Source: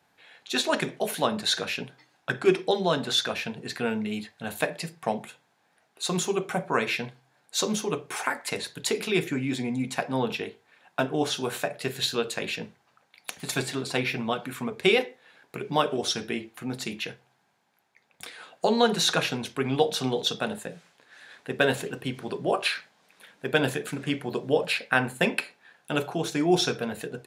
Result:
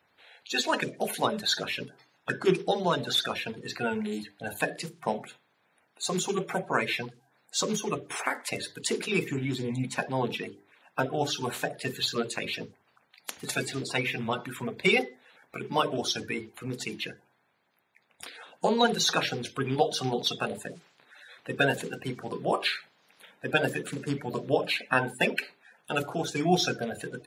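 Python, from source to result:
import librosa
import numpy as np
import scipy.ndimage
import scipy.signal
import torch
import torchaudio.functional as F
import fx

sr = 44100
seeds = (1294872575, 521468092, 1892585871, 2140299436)

y = fx.spec_quant(x, sr, step_db=30)
y = fx.hum_notches(y, sr, base_hz=50, count=8)
y = F.gain(torch.from_numpy(y), -1.0).numpy()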